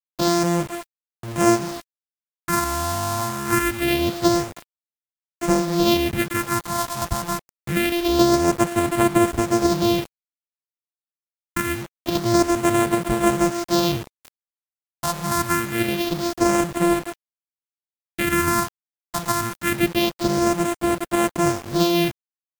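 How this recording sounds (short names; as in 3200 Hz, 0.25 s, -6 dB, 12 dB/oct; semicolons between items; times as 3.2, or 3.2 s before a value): a buzz of ramps at a fixed pitch in blocks of 128 samples; phasing stages 4, 0.25 Hz, lowest notch 390–4900 Hz; a quantiser's noise floor 6-bit, dither none; Vorbis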